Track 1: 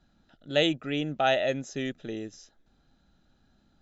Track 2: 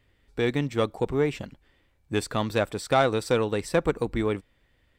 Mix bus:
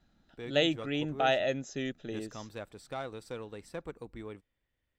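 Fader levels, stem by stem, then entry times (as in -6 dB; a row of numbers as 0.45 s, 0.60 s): -3.0 dB, -17.5 dB; 0.00 s, 0.00 s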